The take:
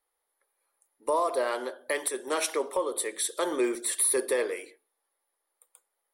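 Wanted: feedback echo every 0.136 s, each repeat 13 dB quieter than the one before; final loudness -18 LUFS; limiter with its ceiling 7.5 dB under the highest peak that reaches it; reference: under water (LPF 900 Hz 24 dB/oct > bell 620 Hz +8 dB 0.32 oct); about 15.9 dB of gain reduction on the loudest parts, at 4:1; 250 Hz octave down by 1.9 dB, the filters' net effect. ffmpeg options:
-af "equalizer=f=250:t=o:g=-4,acompressor=threshold=-43dB:ratio=4,alimiter=level_in=10dB:limit=-24dB:level=0:latency=1,volume=-10dB,lowpass=f=900:w=0.5412,lowpass=f=900:w=1.3066,equalizer=f=620:t=o:w=0.32:g=8,aecho=1:1:136|272|408:0.224|0.0493|0.0108,volume=27dB"

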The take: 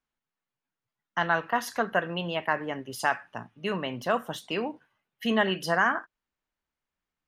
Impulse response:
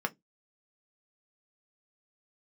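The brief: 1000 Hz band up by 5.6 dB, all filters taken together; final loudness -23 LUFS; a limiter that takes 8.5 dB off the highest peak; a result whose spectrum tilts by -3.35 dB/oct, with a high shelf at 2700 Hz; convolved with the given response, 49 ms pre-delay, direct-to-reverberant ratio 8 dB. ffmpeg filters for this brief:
-filter_complex "[0:a]equalizer=f=1k:t=o:g=8,highshelf=f=2.7k:g=-6.5,alimiter=limit=-15.5dB:level=0:latency=1,asplit=2[a][b];[1:a]atrim=start_sample=2205,adelay=49[c];[b][c]afir=irnorm=-1:irlink=0,volume=-14dB[d];[a][d]amix=inputs=2:normalize=0,volume=6.5dB"

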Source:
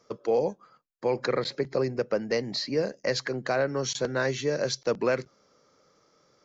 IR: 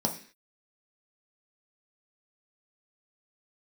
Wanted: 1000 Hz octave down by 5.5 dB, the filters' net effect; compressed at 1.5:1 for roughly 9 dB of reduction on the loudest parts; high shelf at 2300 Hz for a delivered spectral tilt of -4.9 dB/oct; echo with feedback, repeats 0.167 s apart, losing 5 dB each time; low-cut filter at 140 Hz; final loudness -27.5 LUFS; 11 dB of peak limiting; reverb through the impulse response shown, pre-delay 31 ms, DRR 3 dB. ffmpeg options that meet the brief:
-filter_complex "[0:a]highpass=140,equalizer=f=1k:t=o:g=-7,highshelf=f=2.3k:g=-5,acompressor=threshold=-49dB:ratio=1.5,alimiter=level_in=11.5dB:limit=-24dB:level=0:latency=1,volume=-11.5dB,aecho=1:1:167|334|501|668|835|1002|1169:0.562|0.315|0.176|0.0988|0.0553|0.031|0.0173,asplit=2[a][b];[1:a]atrim=start_sample=2205,adelay=31[c];[b][c]afir=irnorm=-1:irlink=0,volume=-10.5dB[d];[a][d]amix=inputs=2:normalize=0,volume=12.5dB"

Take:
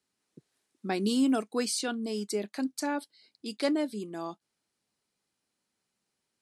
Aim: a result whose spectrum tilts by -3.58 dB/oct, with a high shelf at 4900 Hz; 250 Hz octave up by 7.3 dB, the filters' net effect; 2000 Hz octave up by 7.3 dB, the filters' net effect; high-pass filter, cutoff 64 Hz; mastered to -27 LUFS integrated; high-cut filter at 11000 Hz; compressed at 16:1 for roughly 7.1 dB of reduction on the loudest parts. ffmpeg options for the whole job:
-af "highpass=64,lowpass=11k,equalizer=f=250:t=o:g=8,equalizer=f=2k:t=o:g=8,highshelf=f=4.9k:g=8.5,acompressor=threshold=-21dB:ratio=16,volume=1dB"

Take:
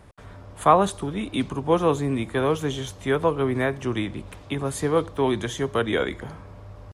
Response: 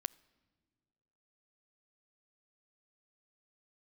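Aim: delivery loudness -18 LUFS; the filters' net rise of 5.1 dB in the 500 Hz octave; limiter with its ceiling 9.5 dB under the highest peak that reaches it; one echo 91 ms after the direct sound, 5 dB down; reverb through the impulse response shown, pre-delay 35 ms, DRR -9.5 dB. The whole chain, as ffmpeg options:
-filter_complex "[0:a]equalizer=f=500:t=o:g=6,alimiter=limit=-11.5dB:level=0:latency=1,aecho=1:1:91:0.562,asplit=2[a][b];[1:a]atrim=start_sample=2205,adelay=35[c];[b][c]afir=irnorm=-1:irlink=0,volume=11dB[d];[a][d]amix=inputs=2:normalize=0,volume=-5dB"

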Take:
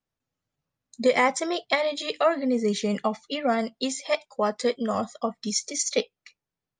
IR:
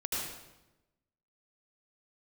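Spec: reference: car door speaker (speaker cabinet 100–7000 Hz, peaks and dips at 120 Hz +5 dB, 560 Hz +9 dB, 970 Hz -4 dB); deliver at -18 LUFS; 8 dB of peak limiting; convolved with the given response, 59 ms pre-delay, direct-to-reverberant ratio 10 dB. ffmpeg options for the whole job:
-filter_complex "[0:a]alimiter=limit=-17.5dB:level=0:latency=1,asplit=2[a][b];[1:a]atrim=start_sample=2205,adelay=59[c];[b][c]afir=irnorm=-1:irlink=0,volume=-15dB[d];[a][d]amix=inputs=2:normalize=0,highpass=100,equalizer=f=120:t=q:w=4:g=5,equalizer=f=560:t=q:w=4:g=9,equalizer=f=970:t=q:w=4:g=-4,lowpass=f=7k:w=0.5412,lowpass=f=7k:w=1.3066,volume=8dB"

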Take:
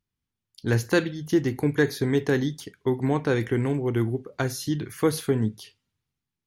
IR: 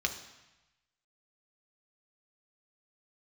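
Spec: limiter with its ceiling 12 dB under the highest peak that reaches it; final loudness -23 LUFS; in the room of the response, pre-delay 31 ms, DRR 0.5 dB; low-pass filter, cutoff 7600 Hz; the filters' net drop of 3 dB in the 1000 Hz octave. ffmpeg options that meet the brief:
-filter_complex "[0:a]lowpass=7.6k,equalizer=f=1k:t=o:g=-4,alimiter=limit=-21dB:level=0:latency=1,asplit=2[a][b];[1:a]atrim=start_sample=2205,adelay=31[c];[b][c]afir=irnorm=-1:irlink=0,volume=-6dB[d];[a][d]amix=inputs=2:normalize=0,volume=6.5dB"

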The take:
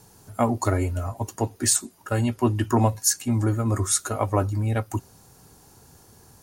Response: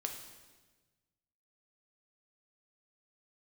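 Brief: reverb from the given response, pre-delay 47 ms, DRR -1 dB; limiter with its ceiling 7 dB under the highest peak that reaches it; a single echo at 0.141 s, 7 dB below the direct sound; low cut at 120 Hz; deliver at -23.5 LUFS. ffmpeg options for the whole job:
-filter_complex "[0:a]highpass=120,alimiter=limit=-14dB:level=0:latency=1,aecho=1:1:141:0.447,asplit=2[a][b];[1:a]atrim=start_sample=2205,adelay=47[c];[b][c]afir=irnorm=-1:irlink=0,volume=1dB[d];[a][d]amix=inputs=2:normalize=0,volume=-0.5dB"

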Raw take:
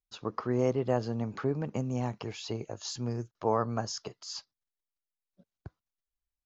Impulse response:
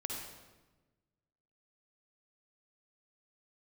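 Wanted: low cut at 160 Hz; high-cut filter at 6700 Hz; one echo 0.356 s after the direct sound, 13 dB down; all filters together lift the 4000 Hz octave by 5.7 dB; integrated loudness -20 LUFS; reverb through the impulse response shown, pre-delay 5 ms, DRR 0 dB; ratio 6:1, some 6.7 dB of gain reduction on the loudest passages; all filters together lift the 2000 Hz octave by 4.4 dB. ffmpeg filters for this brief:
-filter_complex "[0:a]highpass=160,lowpass=6.7k,equalizer=f=2k:t=o:g=4,equalizer=f=4k:t=o:g=7.5,acompressor=threshold=-29dB:ratio=6,aecho=1:1:356:0.224,asplit=2[a][b];[1:a]atrim=start_sample=2205,adelay=5[c];[b][c]afir=irnorm=-1:irlink=0,volume=-1dB[d];[a][d]amix=inputs=2:normalize=0,volume=12.5dB"

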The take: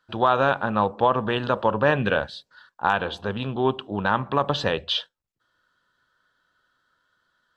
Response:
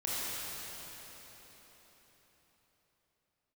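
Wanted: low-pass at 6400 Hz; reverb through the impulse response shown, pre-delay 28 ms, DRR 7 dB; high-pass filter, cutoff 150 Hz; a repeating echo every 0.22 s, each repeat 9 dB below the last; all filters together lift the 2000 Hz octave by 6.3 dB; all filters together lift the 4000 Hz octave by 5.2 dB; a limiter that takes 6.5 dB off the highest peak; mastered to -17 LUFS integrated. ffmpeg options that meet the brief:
-filter_complex "[0:a]highpass=150,lowpass=6.4k,equalizer=f=2k:t=o:g=8.5,equalizer=f=4k:t=o:g=3.5,alimiter=limit=-8dB:level=0:latency=1,aecho=1:1:220|440|660|880:0.355|0.124|0.0435|0.0152,asplit=2[a][b];[1:a]atrim=start_sample=2205,adelay=28[c];[b][c]afir=irnorm=-1:irlink=0,volume=-13.5dB[d];[a][d]amix=inputs=2:normalize=0,volume=5dB"

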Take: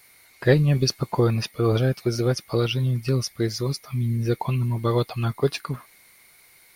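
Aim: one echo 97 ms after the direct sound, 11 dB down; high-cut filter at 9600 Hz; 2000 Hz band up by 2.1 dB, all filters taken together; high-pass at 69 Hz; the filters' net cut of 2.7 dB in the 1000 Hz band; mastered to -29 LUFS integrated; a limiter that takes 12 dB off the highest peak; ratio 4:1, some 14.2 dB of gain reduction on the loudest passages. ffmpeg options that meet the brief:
-af "highpass=69,lowpass=9.6k,equalizer=f=1k:t=o:g=-4.5,equalizer=f=2k:t=o:g=4,acompressor=threshold=-29dB:ratio=4,alimiter=level_in=3dB:limit=-24dB:level=0:latency=1,volume=-3dB,aecho=1:1:97:0.282,volume=7.5dB"

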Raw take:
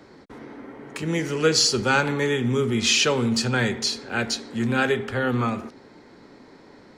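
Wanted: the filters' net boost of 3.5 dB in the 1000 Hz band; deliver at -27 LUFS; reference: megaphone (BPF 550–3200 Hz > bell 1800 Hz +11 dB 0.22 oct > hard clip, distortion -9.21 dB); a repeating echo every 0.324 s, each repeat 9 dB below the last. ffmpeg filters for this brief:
-af "highpass=550,lowpass=3.2k,equalizer=f=1k:t=o:g=5,equalizer=f=1.8k:t=o:w=0.22:g=11,aecho=1:1:324|648|972|1296:0.355|0.124|0.0435|0.0152,asoftclip=type=hard:threshold=-19.5dB,volume=-2dB"

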